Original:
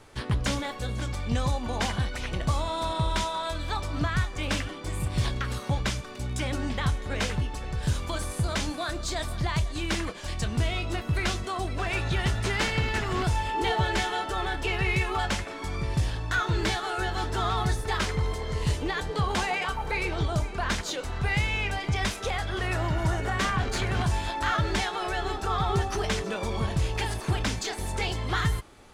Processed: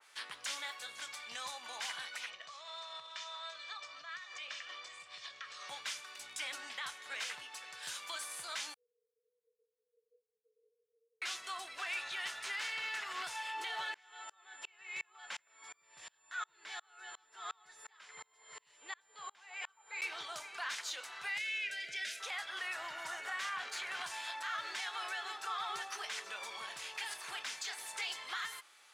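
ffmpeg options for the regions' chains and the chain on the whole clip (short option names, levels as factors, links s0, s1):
-filter_complex "[0:a]asettb=1/sr,asplit=3[s0][s1][s2];[s0]atrim=end=2.304[s3];[s1]atrim=start=2.3:end=5.69,asetpts=PTS-STARTPTS,afade=t=in:d=0.004:c=qsin,afade=t=out:st=3.386:d=0.004:c=qsin,lowpass=f=6500:w=0.5412,lowpass=f=6500:w=1.3066,acompressor=threshold=0.0251:ratio=16:attack=3.2:release=140:knee=1:detection=peak,aecho=1:1:1.7:0.49,atrim=end_sample=149499[s4];[s2]atrim=start=5.686[s5];[s3][s4]acrossfade=d=0.004:c1=hsin:c2=qsin[s6];[s6][s5]acrossfade=d=0.004:c1=qsin:c2=hsin,asettb=1/sr,asplit=3[s7][s8][s9];[s7]atrim=end=8.744[s10];[s8]atrim=start=8.74:end=11.22,asetpts=PTS-STARTPTS,afade=t=in:d=0.004:c=qsin,afade=t=out:st=2.476:d=0.004:c=qsin,flanger=delay=16:depth=4.8:speed=1.9,aeval=exprs='clip(val(0),-1,0.0133)':c=same,asuperpass=centerf=460:order=20:qfactor=7.3[s11];[s9]atrim=start=11.216[s12];[s10][s11]acrossfade=d=0.004:c1=hsin:c2=qsin[s13];[s13][s12]acrossfade=d=0.004:c1=qsin:c2=hsin,asettb=1/sr,asplit=3[s14][s15][s16];[s14]atrim=end=13.944[s17];[s15]atrim=start=13.94:end=20.02,asetpts=PTS-STARTPTS,afade=t=in:d=0.004:c=qsin,afade=t=out:st=6.076:d=0.004:c=qsin,aemphasis=mode=reproduction:type=75kf,aeval=exprs='val(0)+0.00447*sin(2*PI*7200*n/s)':c=same,aeval=exprs='val(0)*pow(10,-33*if(lt(mod(-2.8*n/s,1),2*abs(-2.8)/1000),1-mod(-2.8*n/s,1)/(2*abs(-2.8)/1000),(mod(-2.8*n/s,1)-2*abs(-2.8)/1000)/(1-2*abs(-2.8)/1000))/20)':c=same[s18];[s16]atrim=start=20.016[s19];[s17][s18]acrossfade=d=0.004:c1=hsin:c2=qsin[s20];[s20][s19]acrossfade=d=0.004:c1=qsin:c2=hsin,asettb=1/sr,asplit=3[s21][s22][s23];[s21]atrim=end=21.384[s24];[s22]atrim=start=21.38:end=22.2,asetpts=PTS-STARTPTS,afade=t=in:d=0.004:c=qsin,afade=t=out:st=0.816:d=0.004:c=qsin,asuperstop=centerf=1000:order=12:qfactor=1.4,highshelf=f=11000:g=-6[s25];[s23]atrim=start=22.196[s26];[s24][s25]acrossfade=d=0.004:c1=hsin:c2=qsin[s27];[s27][s26]acrossfade=d=0.004:c1=qsin:c2=hsin,highpass=1500,alimiter=level_in=1.26:limit=0.0631:level=0:latency=1:release=61,volume=0.794,adynamicequalizer=threshold=0.00631:dfrequency=2400:dqfactor=0.7:tfrequency=2400:tqfactor=0.7:attack=5:release=100:ratio=0.375:range=1.5:mode=cutabove:tftype=highshelf,volume=0.75"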